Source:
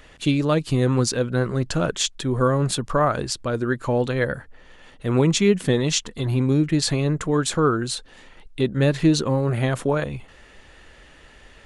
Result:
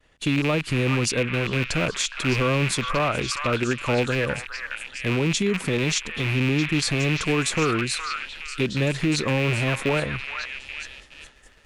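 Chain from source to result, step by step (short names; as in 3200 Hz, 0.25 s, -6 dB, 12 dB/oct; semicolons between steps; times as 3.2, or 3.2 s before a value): rattling part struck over -27 dBFS, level -14 dBFS; limiter -14 dBFS, peak gain reduction 8.5 dB; on a send: delay with a stepping band-pass 0.415 s, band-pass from 1500 Hz, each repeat 0.7 oct, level -2 dB; on the sum: expander -39 dBFS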